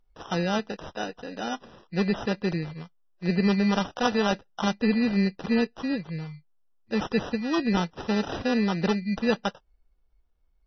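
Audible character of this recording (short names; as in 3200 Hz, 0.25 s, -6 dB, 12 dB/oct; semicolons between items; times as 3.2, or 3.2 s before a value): aliases and images of a low sample rate 2200 Hz, jitter 0%; MP3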